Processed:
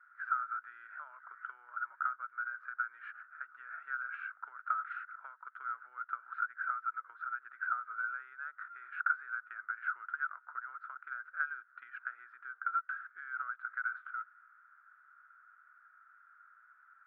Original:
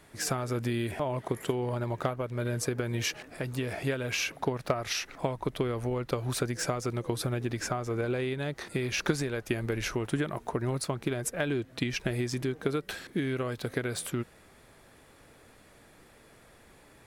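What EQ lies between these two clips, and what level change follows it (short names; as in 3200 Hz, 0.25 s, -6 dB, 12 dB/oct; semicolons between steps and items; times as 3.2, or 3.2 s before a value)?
Butterworth band-pass 1400 Hz, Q 6.5; air absorption 490 m; tilt +3.5 dB/oct; +11.0 dB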